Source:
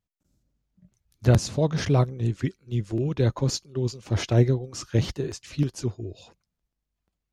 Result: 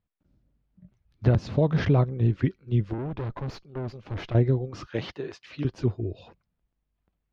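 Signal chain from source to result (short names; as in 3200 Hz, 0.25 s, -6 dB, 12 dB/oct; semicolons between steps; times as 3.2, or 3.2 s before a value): 4.87–5.65 HPF 820 Hz 6 dB/oct; compressor 6:1, threshold -21 dBFS, peak gain reduction 8.5 dB; 2.93–4.35 tube stage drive 33 dB, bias 0.75; air absorption 320 m; gain +4.5 dB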